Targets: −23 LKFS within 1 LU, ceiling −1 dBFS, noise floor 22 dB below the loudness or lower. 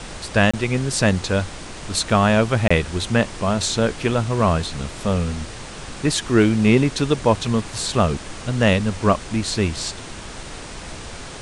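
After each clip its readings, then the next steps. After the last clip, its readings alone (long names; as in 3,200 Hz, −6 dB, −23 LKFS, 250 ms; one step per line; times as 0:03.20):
number of dropouts 2; longest dropout 25 ms; background noise floor −35 dBFS; target noise floor −43 dBFS; integrated loudness −20.5 LKFS; sample peak −2.5 dBFS; target loudness −23.0 LKFS
→ repair the gap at 0:00.51/0:02.68, 25 ms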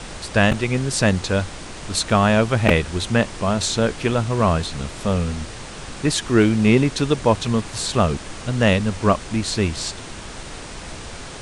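number of dropouts 0; background noise floor −35 dBFS; target noise floor −42 dBFS
→ noise reduction from a noise print 7 dB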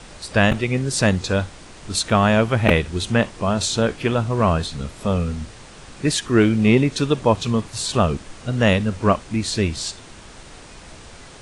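background noise floor −42 dBFS; integrated loudness −20.0 LKFS; sample peak −1.5 dBFS; target loudness −23.0 LKFS
→ level −3 dB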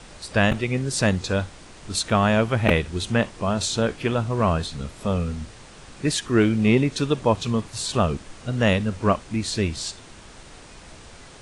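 integrated loudness −23.0 LKFS; sample peak −4.5 dBFS; background noise floor −45 dBFS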